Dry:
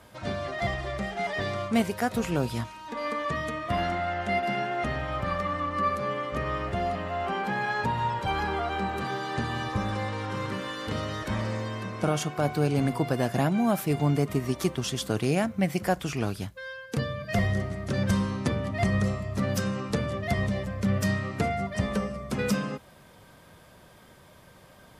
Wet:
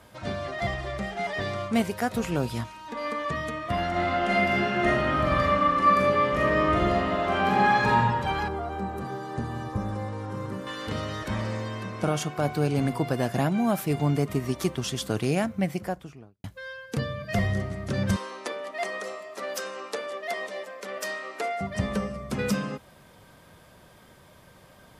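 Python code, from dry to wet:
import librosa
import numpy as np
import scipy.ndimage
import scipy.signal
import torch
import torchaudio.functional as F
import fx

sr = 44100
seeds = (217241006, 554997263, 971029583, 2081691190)

y = fx.reverb_throw(x, sr, start_s=3.9, length_s=4.05, rt60_s=1.4, drr_db=-6.0)
y = fx.peak_eq(y, sr, hz=3000.0, db=-13.0, octaves=2.3, at=(8.48, 10.67))
y = fx.studio_fade_out(y, sr, start_s=15.45, length_s=0.99)
y = fx.highpass(y, sr, hz=400.0, slope=24, at=(18.16, 21.61))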